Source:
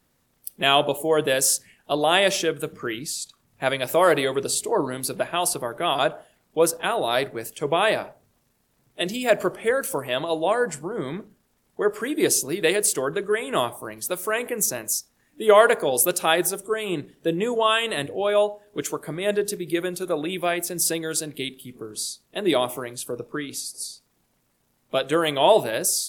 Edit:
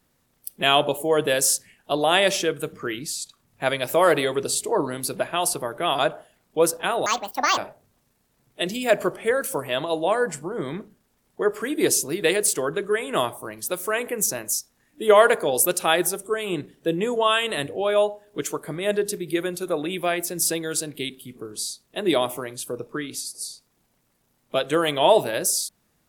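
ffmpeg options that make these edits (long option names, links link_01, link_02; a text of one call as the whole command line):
ffmpeg -i in.wav -filter_complex "[0:a]asplit=3[link_01][link_02][link_03];[link_01]atrim=end=7.064[link_04];[link_02]atrim=start=7.06:end=7.97,asetpts=PTS-STARTPTS,asetrate=78057,aresample=44100[link_05];[link_03]atrim=start=7.966[link_06];[link_04][link_05]acrossfade=duration=0.004:curve1=hsin:curve2=hsin[link_07];[link_07][link_06]acrossfade=duration=0.004:curve1=hsin:curve2=hsin" out.wav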